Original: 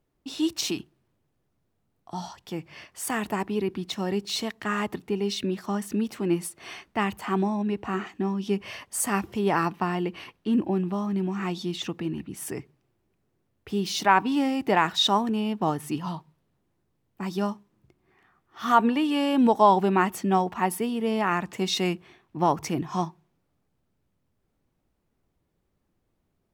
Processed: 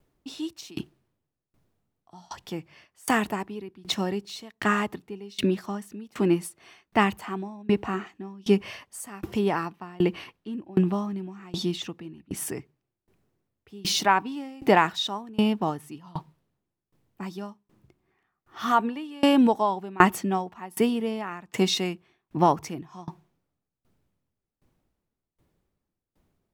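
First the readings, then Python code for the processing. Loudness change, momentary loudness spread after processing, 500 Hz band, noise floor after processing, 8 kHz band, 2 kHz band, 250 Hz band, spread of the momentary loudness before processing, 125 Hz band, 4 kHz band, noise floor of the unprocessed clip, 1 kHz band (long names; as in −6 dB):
0.0 dB, 18 LU, 0.0 dB, below −85 dBFS, −2.0 dB, +1.0 dB, −0.5 dB, 14 LU, −0.5 dB, −1.0 dB, −75 dBFS, −1.5 dB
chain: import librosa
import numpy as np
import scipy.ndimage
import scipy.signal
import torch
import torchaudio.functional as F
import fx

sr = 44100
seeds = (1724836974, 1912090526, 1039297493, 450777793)

y = fx.tremolo_decay(x, sr, direction='decaying', hz=1.3, depth_db=27)
y = y * 10.0 ** (8.0 / 20.0)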